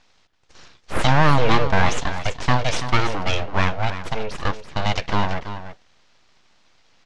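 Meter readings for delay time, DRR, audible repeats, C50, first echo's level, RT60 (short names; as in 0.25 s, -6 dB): 0.332 s, none, 1, none, -11.0 dB, none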